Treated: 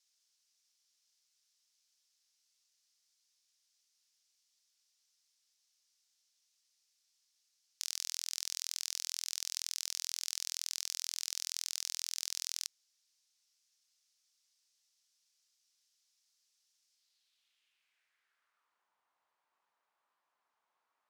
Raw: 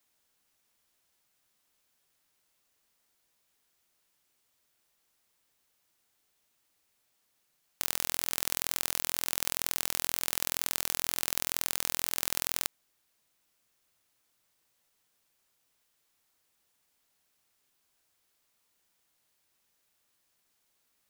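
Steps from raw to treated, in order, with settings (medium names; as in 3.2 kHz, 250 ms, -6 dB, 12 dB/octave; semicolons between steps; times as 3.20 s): saturation -4 dBFS, distortion -17 dB; band-pass sweep 5.4 kHz -> 990 Hz, 16.91–18.89 s; trim +5.5 dB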